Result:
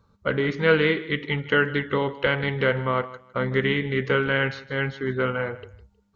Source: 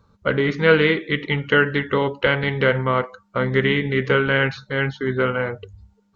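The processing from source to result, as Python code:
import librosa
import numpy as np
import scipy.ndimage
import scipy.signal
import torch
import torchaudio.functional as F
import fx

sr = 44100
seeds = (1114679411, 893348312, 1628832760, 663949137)

y = fx.echo_feedback(x, sr, ms=157, feedback_pct=22, wet_db=-18.0)
y = y * librosa.db_to_amplitude(-4.0)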